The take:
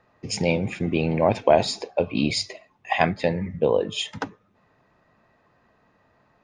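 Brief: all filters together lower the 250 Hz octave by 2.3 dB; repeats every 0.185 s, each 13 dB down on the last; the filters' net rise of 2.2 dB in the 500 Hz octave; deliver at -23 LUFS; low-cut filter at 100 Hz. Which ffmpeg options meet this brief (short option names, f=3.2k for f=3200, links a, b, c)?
-af "highpass=100,equalizer=f=250:t=o:g=-4,equalizer=f=500:t=o:g=3.5,aecho=1:1:185|370|555:0.224|0.0493|0.0108,volume=-0.5dB"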